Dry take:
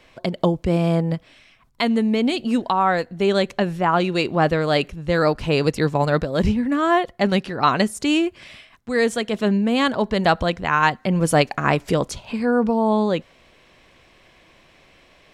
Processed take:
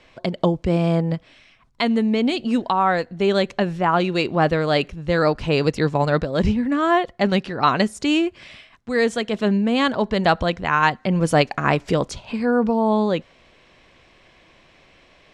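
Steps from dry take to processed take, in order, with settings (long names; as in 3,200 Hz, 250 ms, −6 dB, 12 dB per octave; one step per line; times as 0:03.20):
low-pass filter 7,400 Hz 12 dB per octave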